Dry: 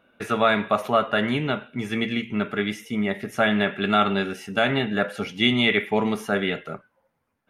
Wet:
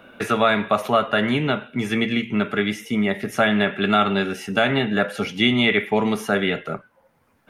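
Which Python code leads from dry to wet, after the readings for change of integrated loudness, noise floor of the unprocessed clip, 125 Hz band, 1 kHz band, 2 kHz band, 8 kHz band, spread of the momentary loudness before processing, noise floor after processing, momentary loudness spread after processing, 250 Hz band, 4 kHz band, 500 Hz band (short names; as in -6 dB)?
+2.5 dB, -74 dBFS, +3.0 dB, +2.0 dB, +2.5 dB, +5.0 dB, 8 LU, -63 dBFS, 6 LU, +3.0 dB, +2.0 dB, +2.5 dB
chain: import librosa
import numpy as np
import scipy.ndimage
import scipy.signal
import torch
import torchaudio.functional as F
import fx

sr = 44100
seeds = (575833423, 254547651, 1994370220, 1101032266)

y = fx.band_squash(x, sr, depth_pct=40)
y = y * librosa.db_to_amplitude(2.5)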